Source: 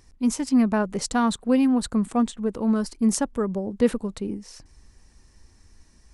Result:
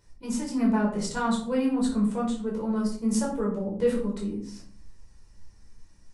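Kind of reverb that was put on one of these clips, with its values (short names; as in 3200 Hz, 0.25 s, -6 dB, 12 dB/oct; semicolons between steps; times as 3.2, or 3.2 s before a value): shoebox room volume 530 m³, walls furnished, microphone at 4.8 m; gain -11 dB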